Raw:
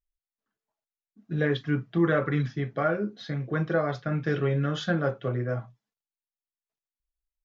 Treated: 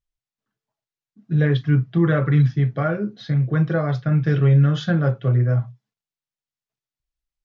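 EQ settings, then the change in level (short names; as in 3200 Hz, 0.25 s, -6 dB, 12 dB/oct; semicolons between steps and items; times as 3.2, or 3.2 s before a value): air absorption 120 m; bell 130 Hz +12.5 dB 0.93 oct; high shelf 4700 Hz +12 dB; +1.5 dB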